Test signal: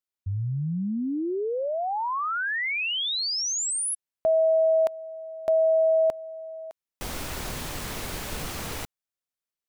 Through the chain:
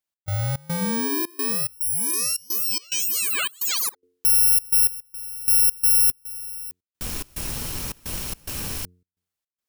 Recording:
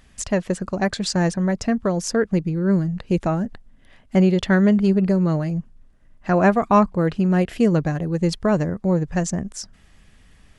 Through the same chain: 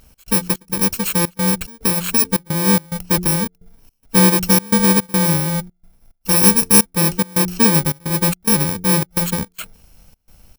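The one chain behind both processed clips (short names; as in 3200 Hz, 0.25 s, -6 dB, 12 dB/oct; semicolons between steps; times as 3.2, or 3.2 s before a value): FFT order left unsorted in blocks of 64 samples; de-hum 89.19 Hz, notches 5; step gate "x.xx.xxx" 108 bpm -24 dB; gain +4 dB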